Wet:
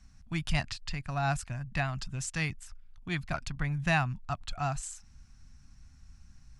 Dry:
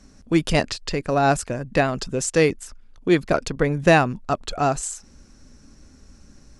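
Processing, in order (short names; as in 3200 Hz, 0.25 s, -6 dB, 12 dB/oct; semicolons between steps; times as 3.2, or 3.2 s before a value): EQ curve 130 Hz 0 dB, 490 Hz -29 dB, 710 Hz -9 dB, 2500 Hz -4 dB, 6200 Hz -8 dB; gain -3.5 dB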